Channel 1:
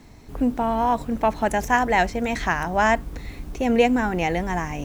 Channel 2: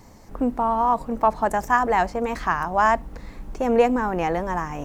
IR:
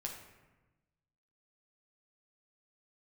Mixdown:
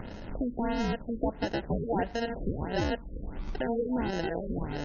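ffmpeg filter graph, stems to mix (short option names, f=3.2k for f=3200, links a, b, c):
-filter_complex "[0:a]aeval=exprs='val(0)*pow(10,-32*(0.5-0.5*cos(2*PI*1.5*n/s))/20)':c=same,volume=-19dB,asplit=2[a][b];[b]volume=-7.5dB[c];[1:a]acompressor=threshold=-31dB:ratio=3,acrusher=samples=38:mix=1:aa=0.000001,volume=0.5dB,asplit=2[d][e];[e]apad=whole_len=213450[f];[a][f]sidechaingate=range=-36dB:threshold=-33dB:ratio=16:detection=peak[g];[2:a]atrim=start_sample=2205[h];[c][h]afir=irnorm=-1:irlink=0[i];[g][d][i]amix=inputs=3:normalize=0,acompressor=mode=upward:threshold=-33dB:ratio=2.5,afftfilt=real='re*lt(b*sr/1024,540*pow(6900/540,0.5+0.5*sin(2*PI*1.5*pts/sr)))':imag='im*lt(b*sr/1024,540*pow(6900/540,0.5+0.5*sin(2*PI*1.5*pts/sr)))':win_size=1024:overlap=0.75"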